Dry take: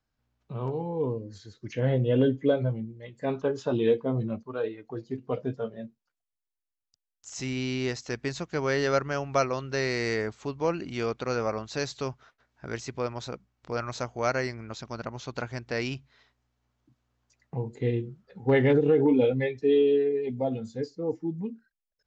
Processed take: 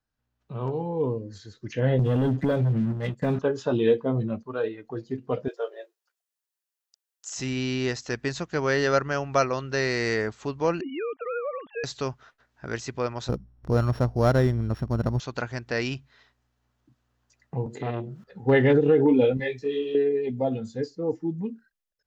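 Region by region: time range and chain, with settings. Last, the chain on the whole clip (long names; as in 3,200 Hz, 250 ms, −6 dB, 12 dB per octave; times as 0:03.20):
0:01.99–0:03.39: parametric band 160 Hz +12 dB 1.2 octaves + leveller curve on the samples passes 2 + downward compressor 8 to 1, threshold −23 dBFS
0:05.48–0:07.35: linear-phase brick-wall high-pass 330 Hz + high-shelf EQ 4,000 Hz +6 dB
0:10.81–0:11.84: three sine waves on the formant tracks + downward compressor 3 to 1, threshold −31 dBFS
0:13.29–0:15.20: samples sorted by size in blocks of 8 samples + spectral tilt −4.5 dB per octave
0:17.66–0:18.24: high-pass filter 110 Hz 24 dB per octave + upward compression, threshold −32 dBFS + saturating transformer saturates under 720 Hz
0:19.37–0:19.95: downward compressor 2 to 1, threshold −26 dBFS + high-shelf EQ 2,700 Hz +10 dB + micro pitch shift up and down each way 33 cents
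whole clip: automatic gain control gain up to 6.5 dB; parametric band 1,700 Hz +2.5 dB; notch filter 2,200 Hz, Q 15; level −4 dB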